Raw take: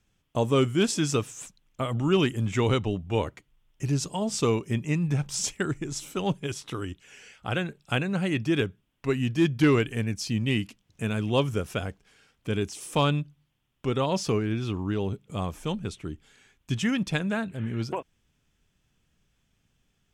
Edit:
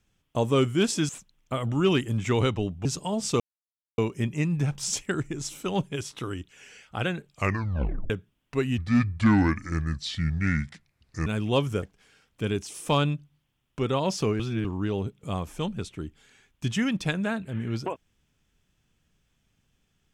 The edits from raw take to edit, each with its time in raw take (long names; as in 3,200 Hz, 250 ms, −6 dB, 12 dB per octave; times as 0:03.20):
0:01.09–0:01.37: remove
0:03.13–0:03.94: remove
0:04.49: splice in silence 0.58 s
0:07.80: tape stop 0.81 s
0:09.29–0:11.08: play speed 72%
0:11.64–0:11.89: remove
0:14.46–0:14.71: reverse